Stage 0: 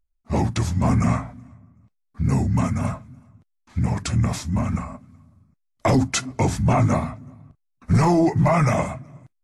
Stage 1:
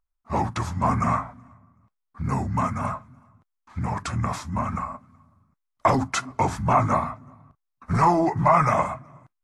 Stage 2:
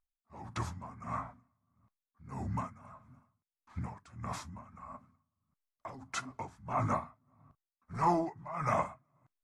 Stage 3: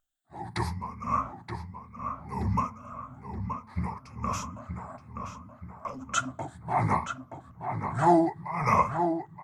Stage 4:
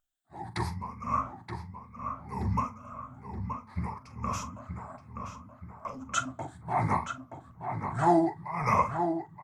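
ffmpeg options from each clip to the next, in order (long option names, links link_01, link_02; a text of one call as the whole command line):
ffmpeg -i in.wav -af "equalizer=frequency=1100:width=1:gain=14,volume=-7dB" out.wav
ffmpeg -i in.wav -af "aeval=exprs='val(0)*pow(10,-20*(0.5-0.5*cos(2*PI*1.6*n/s))/20)':channel_layout=same,volume=-8dB" out.wav
ffmpeg -i in.wav -filter_complex "[0:a]afftfilt=real='re*pow(10,14/40*sin(2*PI*(0.85*log(max(b,1)*sr/1024/100)/log(2)-(0.64)*(pts-256)/sr)))':imag='im*pow(10,14/40*sin(2*PI*(0.85*log(max(b,1)*sr/1024/100)/log(2)-(0.64)*(pts-256)/sr)))':win_size=1024:overlap=0.75,asplit=2[link_01][link_02];[link_02]adelay=925,lowpass=frequency=2900:poles=1,volume=-6.5dB,asplit=2[link_03][link_04];[link_04]adelay=925,lowpass=frequency=2900:poles=1,volume=0.48,asplit=2[link_05][link_06];[link_06]adelay=925,lowpass=frequency=2900:poles=1,volume=0.48,asplit=2[link_07][link_08];[link_08]adelay=925,lowpass=frequency=2900:poles=1,volume=0.48,asplit=2[link_09][link_10];[link_10]adelay=925,lowpass=frequency=2900:poles=1,volume=0.48,asplit=2[link_11][link_12];[link_12]adelay=925,lowpass=frequency=2900:poles=1,volume=0.48[link_13];[link_01][link_03][link_05][link_07][link_09][link_11][link_13]amix=inputs=7:normalize=0,volume=5dB" out.wav
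ffmpeg -i in.wav -filter_complex "[0:a]asplit=2[link_01][link_02];[link_02]adelay=42,volume=-14dB[link_03];[link_01][link_03]amix=inputs=2:normalize=0,volume=-2dB" out.wav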